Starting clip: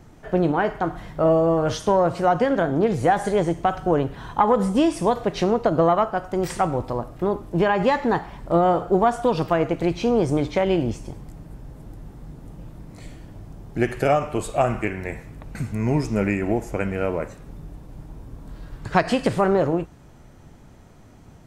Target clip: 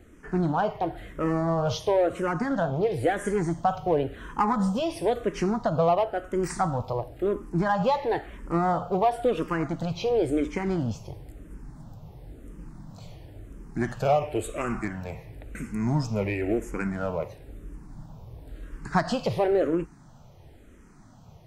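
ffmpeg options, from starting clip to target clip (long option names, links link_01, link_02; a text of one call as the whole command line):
ffmpeg -i in.wav -filter_complex "[0:a]asplit=2[link_01][link_02];[link_02]asoftclip=type=hard:threshold=-18dB,volume=-4dB[link_03];[link_01][link_03]amix=inputs=2:normalize=0,asplit=2[link_04][link_05];[link_05]afreqshift=-0.97[link_06];[link_04][link_06]amix=inputs=2:normalize=1,volume=-5dB" out.wav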